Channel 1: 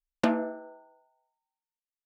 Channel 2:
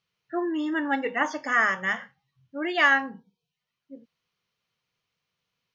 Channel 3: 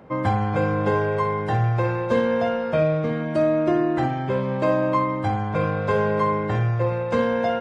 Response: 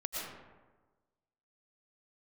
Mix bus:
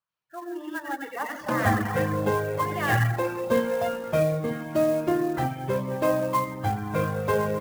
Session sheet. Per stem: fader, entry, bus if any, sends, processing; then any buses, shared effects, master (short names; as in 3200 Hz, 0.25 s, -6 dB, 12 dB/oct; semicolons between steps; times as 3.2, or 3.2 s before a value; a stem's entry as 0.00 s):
+0.5 dB, 1.25 s, bus A, send -5 dB, no echo send, dry
-4.5 dB, 0.00 s, bus A, send -10.5 dB, echo send -9 dB, AGC gain up to 3 dB
-2.5 dB, 1.40 s, no bus, send -15.5 dB, no echo send, dry
bus A: 0.0 dB, Chebyshev band-pass 580–1600 Hz, order 5; compressor 2:1, threshold -32 dBFS, peak gain reduction 6 dB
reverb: on, RT60 1.3 s, pre-delay 75 ms
echo: feedback echo 89 ms, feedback 49%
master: reverb removal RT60 0.85 s; clock jitter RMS 0.02 ms